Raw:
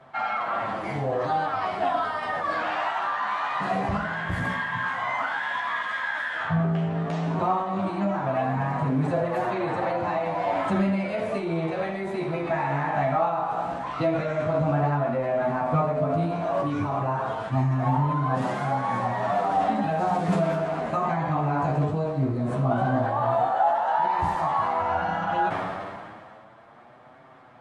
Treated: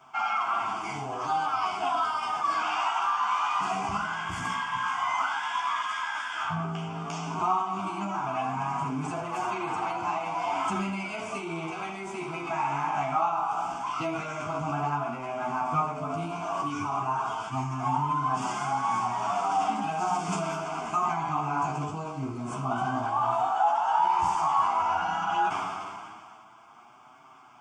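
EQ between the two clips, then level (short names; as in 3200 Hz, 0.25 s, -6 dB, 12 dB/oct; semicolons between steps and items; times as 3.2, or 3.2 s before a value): tone controls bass -13 dB, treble +11 dB; fixed phaser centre 2700 Hz, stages 8; +2.0 dB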